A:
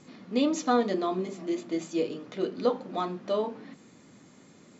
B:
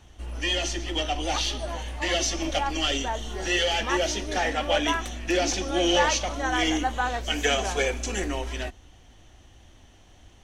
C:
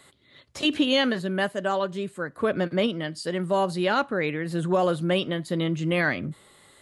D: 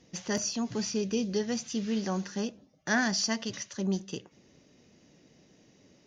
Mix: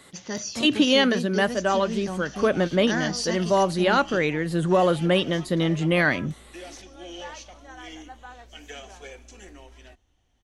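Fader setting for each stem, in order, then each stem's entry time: -17.5, -17.0, +3.0, -1.0 dB; 2.40, 1.25, 0.00, 0.00 s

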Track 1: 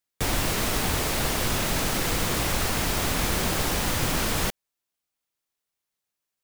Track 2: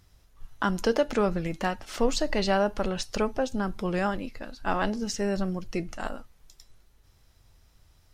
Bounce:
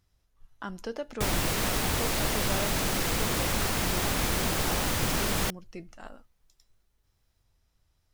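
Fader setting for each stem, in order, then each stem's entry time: -2.5, -11.5 dB; 1.00, 0.00 s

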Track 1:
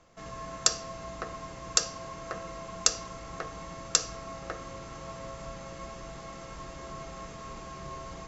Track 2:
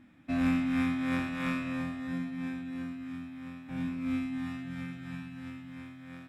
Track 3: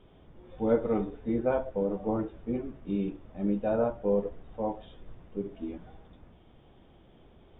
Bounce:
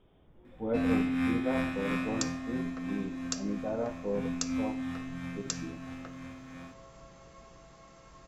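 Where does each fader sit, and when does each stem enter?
-11.5, -0.5, -6.5 dB; 1.55, 0.45, 0.00 s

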